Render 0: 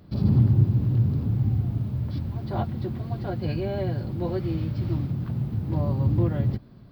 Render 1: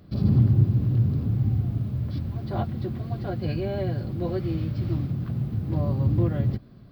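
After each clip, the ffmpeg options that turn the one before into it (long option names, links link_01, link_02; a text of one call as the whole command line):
ffmpeg -i in.wav -af "bandreject=frequency=900:width=7.5" out.wav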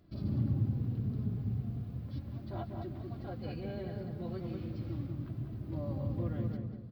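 ffmpeg -i in.wav -filter_complex "[0:a]flanger=delay=2.9:depth=2:regen=45:speed=0.37:shape=triangular,asplit=2[link_01][link_02];[link_02]adelay=194,lowpass=frequency=1600:poles=1,volume=-3.5dB,asplit=2[link_03][link_04];[link_04]adelay=194,lowpass=frequency=1600:poles=1,volume=0.39,asplit=2[link_05][link_06];[link_06]adelay=194,lowpass=frequency=1600:poles=1,volume=0.39,asplit=2[link_07][link_08];[link_08]adelay=194,lowpass=frequency=1600:poles=1,volume=0.39,asplit=2[link_09][link_10];[link_10]adelay=194,lowpass=frequency=1600:poles=1,volume=0.39[link_11];[link_01][link_03][link_05][link_07][link_09][link_11]amix=inputs=6:normalize=0,volume=-7.5dB" out.wav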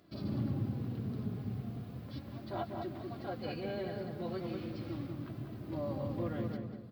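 ffmpeg -i in.wav -af "highpass=frequency=430:poles=1,volume=6.5dB" out.wav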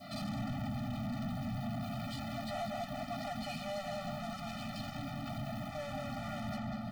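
ffmpeg -i in.wav -filter_complex "[0:a]adynamicequalizer=threshold=0.00141:dfrequency=1500:dqfactor=0.73:tfrequency=1500:tqfactor=0.73:attack=5:release=100:ratio=0.375:range=3:mode=cutabove:tftype=bell,asplit=2[link_01][link_02];[link_02]highpass=frequency=720:poles=1,volume=41dB,asoftclip=type=tanh:threshold=-24dB[link_03];[link_01][link_03]amix=inputs=2:normalize=0,lowpass=frequency=4100:poles=1,volume=-6dB,afftfilt=real='re*eq(mod(floor(b*sr/1024/290),2),0)':imag='im*eq(mod(floor(b*sr/1024/290),2),0)':win_size=1024:overlap=0.75,volume=-6dB" out.wav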